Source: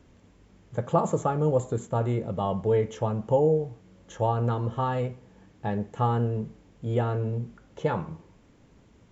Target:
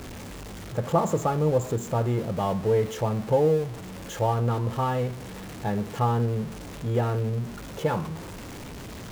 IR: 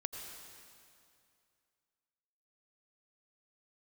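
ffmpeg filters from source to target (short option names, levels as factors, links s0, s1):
-af "aeval=exprs='val(0)+0.5*0.02*sgn(val(0))':c=same"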